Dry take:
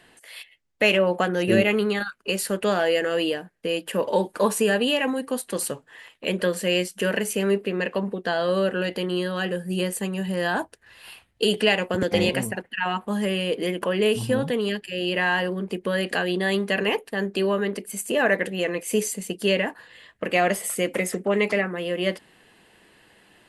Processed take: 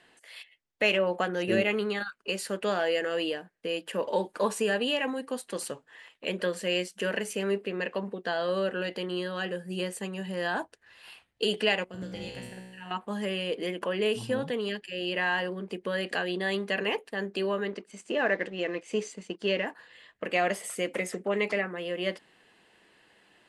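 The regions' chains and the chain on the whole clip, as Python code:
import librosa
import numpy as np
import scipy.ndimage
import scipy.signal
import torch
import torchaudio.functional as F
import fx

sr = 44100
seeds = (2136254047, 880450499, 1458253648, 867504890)

y = fx.chain(x, sr, fx.median_filter(points=3),
    fx.bass_treble(bass_db=11, treble_db=7),
    fx.comb_fb(f0_hz=62.0, decay_s=1.3, harmonics='all', damping=0.0, mix_pct=90), at=(11.84, 12.91))
y = fx.chain(y, sr, fx.law_mismatch(coded='A'),
    fx.bessel_lowpass(hz=5200.0, order=4),
    fx.peak_eq(hz=330.0, db=4.5, octaves=0.29), at=(17.72, 19.66))
y = scipy.signal.sosfilt(scipy.signal.butter(2, 8100.0, 'lowpass', fs=sr, output='sos'), y)
y = fx.low_shelf(y, sr, hz=170.0, db=-8.5)
y = F.gain(torch.from_numpy(y), -5.0).numpy()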